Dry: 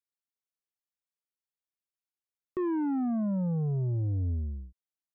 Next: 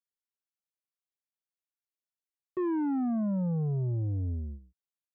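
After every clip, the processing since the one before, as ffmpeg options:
ffmpeg -i in.wav -af "agate=range=-8dB:threshold=-37dB:ratio=16:detection=peak,highpass=81" out.wav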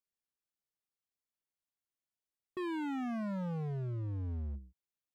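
ffmpeg -i in.wav -af "lowshelf=frequency=490:gain=6,volume=32.5dB,asoftclip=hard,volume=-32.5dB,volume=-3.5dB" out.wav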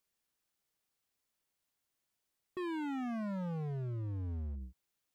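ffmpeg -i in.wav -af "alimiter=level_in=22dB:limit=-24dB:level=0:latency=1,volume=-22dB,volume=9dB" out.wav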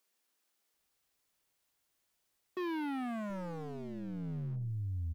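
ffmpeg -i in.wav -filter_complex "[0:a]aeval=exprs='0.015*(cos(1*acos(clip(val(0)/0.015,-1,1)))-cos(1*PI/2))+0.00119*(cos(2*acos(clip(val(0)/0.015,-1,1)))-cos(2*PI/2))+0.00119*(cos(5*acos(clip(val(0)/0.015,-1,1)))-cos(5*PI/2))':channel_layout=same,acrossover=split=190[link_01][link_02];[link_01]adelay=730[link_03];[link_03][link_02]amix=inputs=2:normalize=0,volume=2.5dB" out.wav

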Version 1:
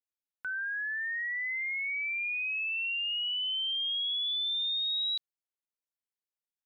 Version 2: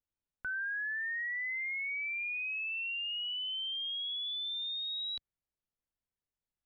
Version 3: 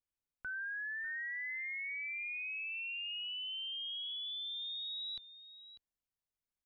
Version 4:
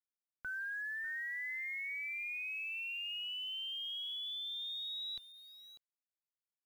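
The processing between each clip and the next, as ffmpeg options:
ffmpeg -i in.wav -af "aemphasis=mode=reproduction:type=riaa" out.wav
ffmpeg -i in.wav -af "aecho=1:1:596:0.211,volume=-4.5dB" out.wav
ffmpeg -i in.wav -af "acrusher=bits=10:mix=0:aa=0.000001" out.wav

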